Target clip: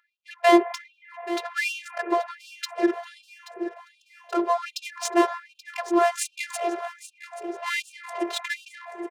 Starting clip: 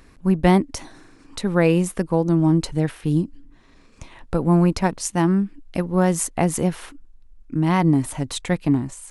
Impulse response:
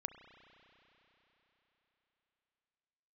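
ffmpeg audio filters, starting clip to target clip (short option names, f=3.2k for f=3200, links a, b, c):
-filter_complex "[0:a]adynamicsmooth=sensitivity=5:basefreq=700,aecho=1:1:830|1660|2490|3320:0.178|0.0836|0.0393|0.0185,asplit=2[a][b];[1:a]atrim=start_sample=2205,asetrate=27783,aresample=44100,highshelf=f=9.1k:g=-9.5[c];[b][c]afir=irnorm=-1:irlink=0,volume=4dB[d];[a][d]amix=inputs=2:normalize=0,afftfilt=real='hypot(re,im)*cos(PI*b)':imag='0':win_size=512:overlap=0.75,afftfilt=real='re*gte(b*sr/1024,330*pow(2500/330,0.5+0.5*sin(2*PI*1.3*pts/sr)))':imag='im*gte(b*sr/1024,330*pow(2500/330,0.5+0.5*sin(2*PI*1.3*pts/sr)))':win_size=1024:overlap=0.75"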